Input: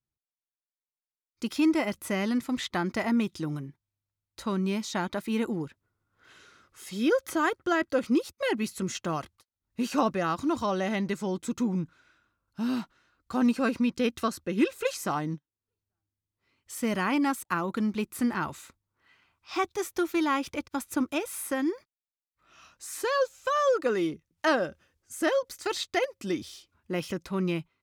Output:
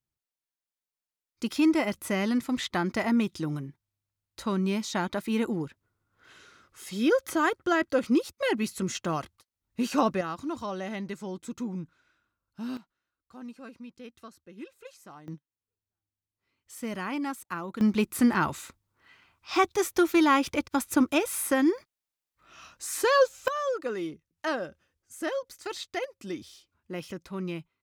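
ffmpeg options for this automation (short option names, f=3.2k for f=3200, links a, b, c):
-af "asetnsamples=n=441:p=0,asendcmd='10.21 volume volume -6dB;12.77 volume volume -18.5dB;15.28 volume volume -6dB;17.81 volume volume 5dB;23.48 volume volume -5.5dB',volume=1dB"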